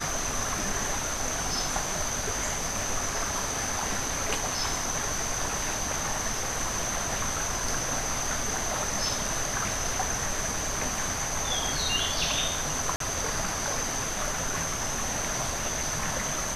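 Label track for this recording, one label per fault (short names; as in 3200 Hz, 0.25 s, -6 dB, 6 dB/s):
12.960000	13.000000	gap 43 ms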